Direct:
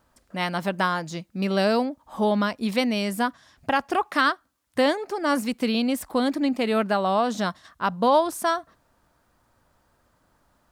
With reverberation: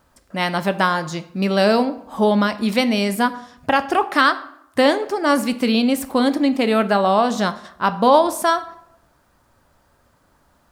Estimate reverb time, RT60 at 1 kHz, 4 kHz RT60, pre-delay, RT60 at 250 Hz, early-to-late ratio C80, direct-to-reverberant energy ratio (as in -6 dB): 0.75 s, 0.75 s, 0.50 s, 4 ms, 0.80 s, 18.5 dB, 10.5 dB